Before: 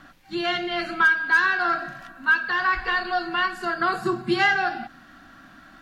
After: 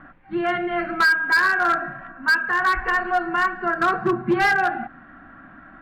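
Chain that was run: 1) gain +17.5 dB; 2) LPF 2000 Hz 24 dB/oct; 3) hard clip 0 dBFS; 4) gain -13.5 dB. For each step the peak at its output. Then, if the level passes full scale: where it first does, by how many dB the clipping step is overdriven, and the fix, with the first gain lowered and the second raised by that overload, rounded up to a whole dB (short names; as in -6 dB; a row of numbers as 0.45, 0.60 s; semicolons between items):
+7.5, +7.5, 0.0, -13.5 dBFS; step 1, 7.5 dB; step 1 +9.5 dB, step 4 -5.5 dB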